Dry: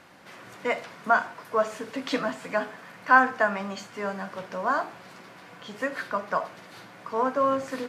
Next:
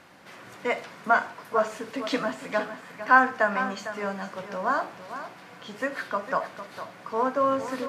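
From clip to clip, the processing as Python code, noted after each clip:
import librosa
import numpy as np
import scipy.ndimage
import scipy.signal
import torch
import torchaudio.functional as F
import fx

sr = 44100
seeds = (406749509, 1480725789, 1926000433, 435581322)

y = x + 10.0 ** (-11.5 / 20.0) * np.pad(x, (int(454 * sr / 1000.0), 0))[:len(x)]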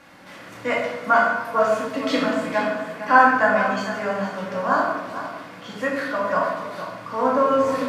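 y = fx.room_shoebox(x, sr, seeds[0], volume_m3=530.0, walls='mixed', distance_m=2.3)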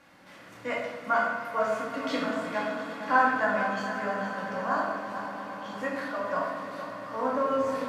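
y = fx.echo_swell(x, sr, ms=117, loudest=5, wet_db=-17)
y = y * librosa.db_to_amplitude(-8.5)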